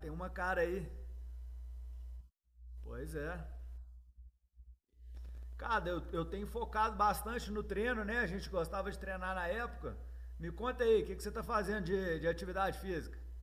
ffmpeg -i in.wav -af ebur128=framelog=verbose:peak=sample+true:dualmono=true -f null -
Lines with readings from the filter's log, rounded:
Integrated loudness:
  I:         -35.0 LUFS
  Threshold: -46.4 LUFS
Loudness range:
  LRA:        12.0 LU
  Threshold: -56.5 LUFS
  LRA low:   -46.1 LUFS
  LRA high:  -34.1 LUFS
Sample peak:
  Peak:      -20.2 dBFS
True peak:
  Peak:      -20.2 dBFS